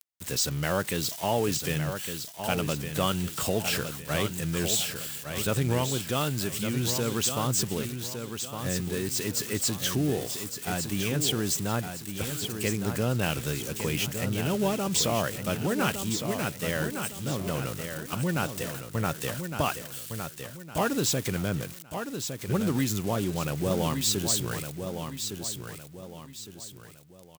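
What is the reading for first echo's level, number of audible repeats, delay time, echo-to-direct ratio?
-7.5 dB, 3, 1160 ms, -7.0 dB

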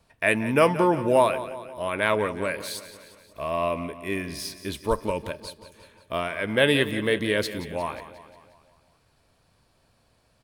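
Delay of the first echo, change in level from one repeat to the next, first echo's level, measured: 178 ms, -5.0 dB, -14.0 dB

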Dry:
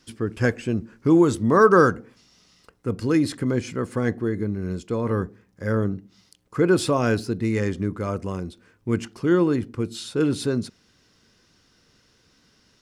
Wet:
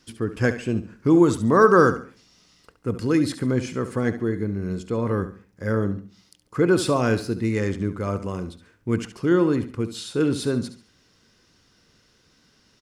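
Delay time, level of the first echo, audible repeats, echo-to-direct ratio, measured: 70 ms, -12.0 dB, 3, -11.5 dB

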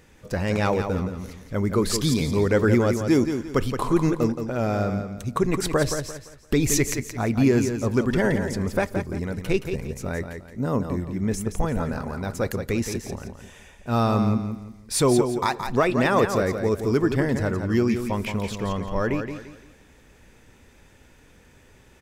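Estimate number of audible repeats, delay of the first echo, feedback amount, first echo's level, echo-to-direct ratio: 3, 172 ms, 32%, -7.5 dB, -7.0 dB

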